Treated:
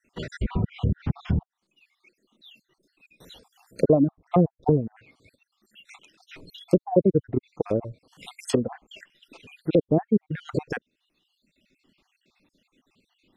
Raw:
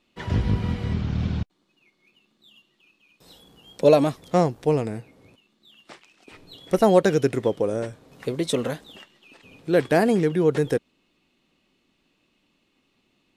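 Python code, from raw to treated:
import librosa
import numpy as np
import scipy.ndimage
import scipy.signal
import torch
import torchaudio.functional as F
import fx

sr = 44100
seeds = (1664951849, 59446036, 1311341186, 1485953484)

y = fx.spec_dropout(x, sr, seeds[0], share_pct=58)
y = fx.env_lowpass_down(y, sr, base_hz=370.0, full_db=-22.0)
y = fx.dereverb_blind(y, sr, rt60_s=1.2)
y = y * librosa.db_to_amplitude(5.0)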